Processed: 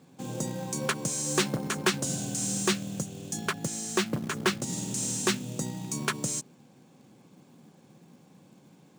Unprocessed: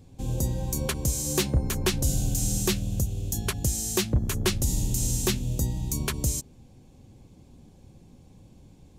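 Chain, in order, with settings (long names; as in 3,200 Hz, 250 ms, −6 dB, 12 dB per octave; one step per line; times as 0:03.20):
0:03.48–0:04.73: high-shelf EQ 4,900 Hz −6 dB
elliptic band-pass filter 160–9,000 Hz, stop band 40 dB
parametric band 1,400 Hz +8 dB 1 octave
floating-point word with a short mantissa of 2 bits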